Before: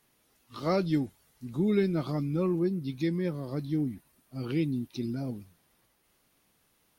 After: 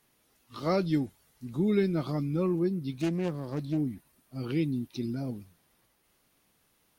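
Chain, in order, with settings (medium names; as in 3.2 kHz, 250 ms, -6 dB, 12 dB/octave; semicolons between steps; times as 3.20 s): 2.93–3.78 s: self-modulated delay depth 0.29 ms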